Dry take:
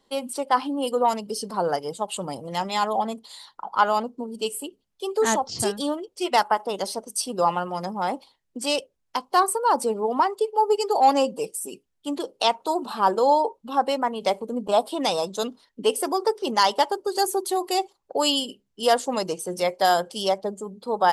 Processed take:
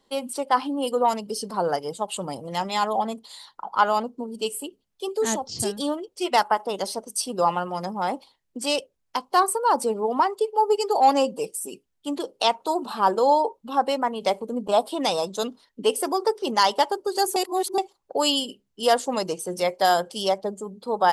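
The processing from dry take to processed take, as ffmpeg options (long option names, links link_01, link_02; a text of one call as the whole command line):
ffmpeg -i in.wav -filter_complex "[0:a]asettb=1/sr,asplit=3[link_01][link_02][link_03];[link_01]atrim=end=5.084[link_04];[link_02]atrim=start=5.08:end=5.77,asetpts=PTS-STARTPTS,afade=type=in:duration=0.004:curve=qsin,afade=type=out:start_time=0.686:duration=0.004:curve=qsin,equalizer=frequency=1200:width=0.7:gain=-8.5[link_05];[link_03]atrim=start=5.766[link_06];[link_04][link_05]acrossfade=duration=0.004:curve1=hsin:curve2=qsin[link_07];[link_07][link_06]acrossfade=duration=0.004:curve1=qsin:curve2=hsin,asplit=3[link_08][link_09][link_10];[link_08]atrim=end=17.362[link_11];[link_09]atrim=start=17.358:end=17.782,asetpts=PTS-STARTPTS,areverse[link_12];[link_10]atrim=start=17.778[link_13];[link_11][link_12]acrossfade=duration=0.004:curve1=hsin:curve2=hsin[link_14];[link_14][link_13]acrossfade=duration=0.004:curve1=hsin:curve2=hsin" out.wav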